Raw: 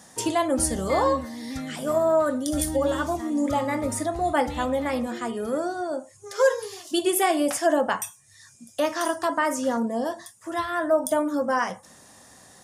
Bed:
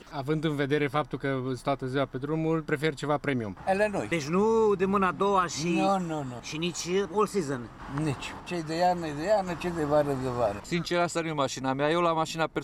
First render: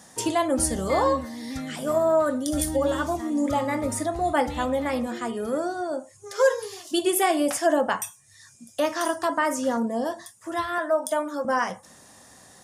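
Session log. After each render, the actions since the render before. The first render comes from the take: 10.78–11.45 s: frequency weighting A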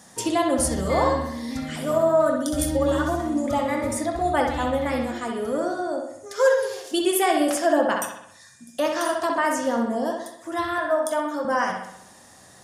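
bucket-brigade echo 64 ms, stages 2048, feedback 55%, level -4.5 dB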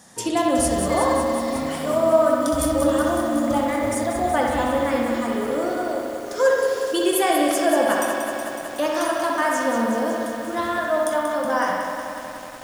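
bucket-brigade echo 99 ms, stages 2048, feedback 50%, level -7 dB; bit-crushed delay 185 ms, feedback 80%, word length 7-bit, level -7 dB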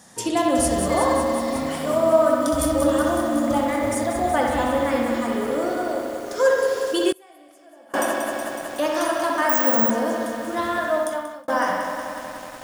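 7.11–7.94 s: inverted gate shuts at -17 dBFS, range -30 dB; 9.49–9.90 s: careless resampling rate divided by 2×, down filtered, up zero stuff; 10.92–11.48 s: fade out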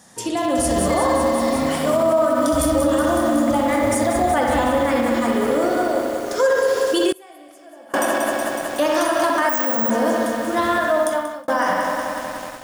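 peak limiter -15 dBFS, peak gain reduction 9.5 dB; level rider gain up to 5.5 dB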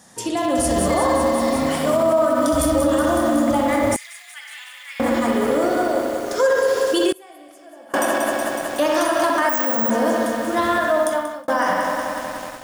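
3.96–5.00 s: ladder high-pass 2 kHz, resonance 45%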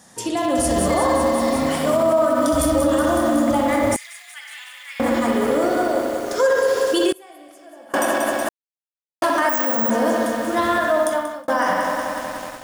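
8.49–9.22 s: mute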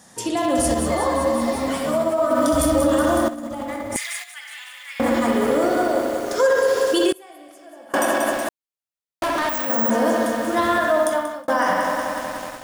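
0.74–2.31 s: three-phase chorus; 3.28–4.24 s: compressor with a negative ratio -25 dBFS, ratio -0.5; 8.34–9.70 s: hard clipper -19.5 dBFS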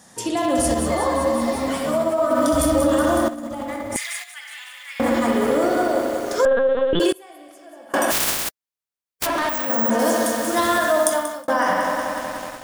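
6.45–7.00 s: LPC vocoder at 8 kHz pitch kept; 8.10–9.25 s: spectral contrast reduction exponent 0.13; 9.99–11.48 s: tone controls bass -2 dB, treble +10 dB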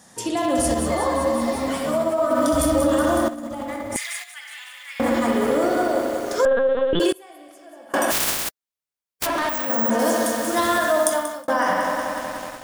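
trim -1 dB

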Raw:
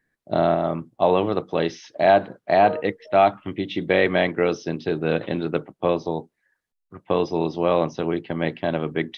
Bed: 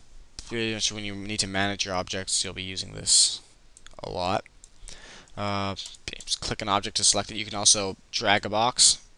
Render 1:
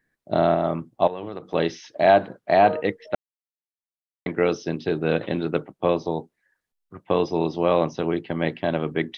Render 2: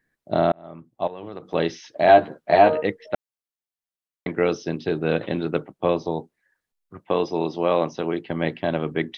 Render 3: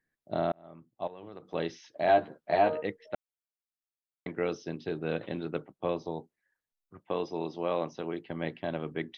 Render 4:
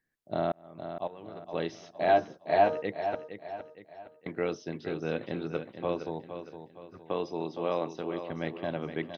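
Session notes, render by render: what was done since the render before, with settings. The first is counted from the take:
1.07–1.54 s: compression 16:1, threshold -27 dBFS; 3.15–4.26 s: mute
0.52–1.54 s: fade in; 2.07–2.84 s: doubling 13 ms -3 dB; 7.04–8.29 s: high-pass 190 Hz 6 dB/octave
trim -10 dB
feedback delay 463 ms, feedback 41%, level -9.5 dB

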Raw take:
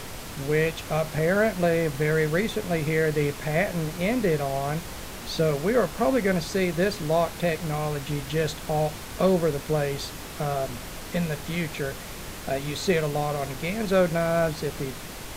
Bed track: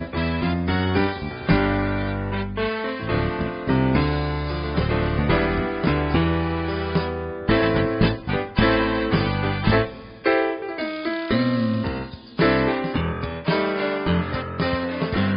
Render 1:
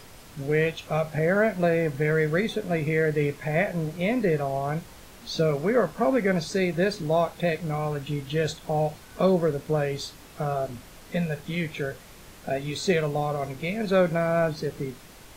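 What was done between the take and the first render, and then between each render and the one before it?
noise print and reduce 10 dB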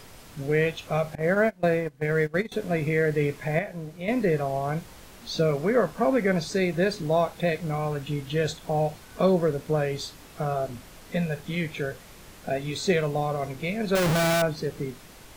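1.15–2.52 s: gate -24 dBFS, range -21 dB; 3.59–4.08 s: gain -7.5 dB; 13.95–14.42 s: Schmitt trigger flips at -36 dBFS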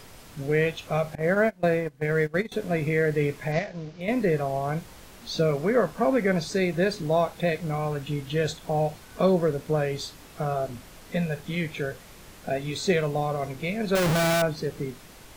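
3.52–4.01 s: CVSD coder 32 kbps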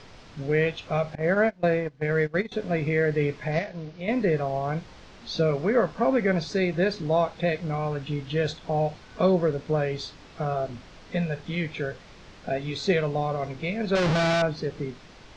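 low-pass 5.6 kHz 24 dB/octave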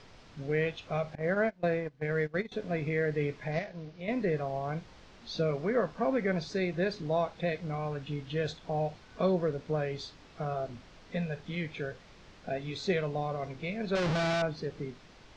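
trim -6.5 dB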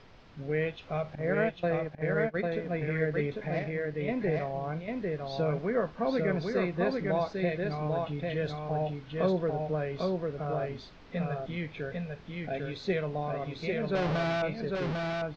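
distance through air 130 m; delay 798 ms -3 dB

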